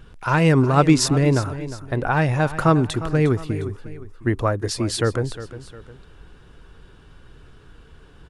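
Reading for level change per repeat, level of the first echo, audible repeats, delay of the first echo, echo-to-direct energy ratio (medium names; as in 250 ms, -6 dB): -7.5 dB, -14.0 dB, 2, 356 ms, -13.0 dB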